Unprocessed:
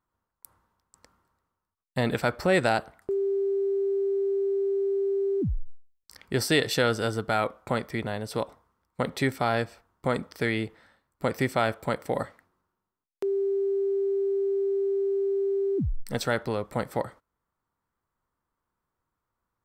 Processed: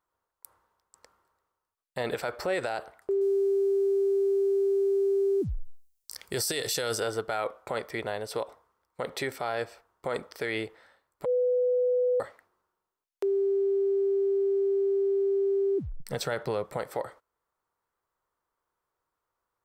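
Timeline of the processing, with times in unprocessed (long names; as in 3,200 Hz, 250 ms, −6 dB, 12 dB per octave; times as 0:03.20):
0:03.21–0:07.00: bass and treble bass +5 dB, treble +14 dB
0:11.25–0:12.20: beep over 497 Hz −24 dBFS
0:16.00–0:16.77: parametric band 150 Hz +12 dB 0.83 octaves
whole clip: low shelf with overshoot 320 Hz −8.5 dB, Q 1.5; brickwall limiter −20 dBFS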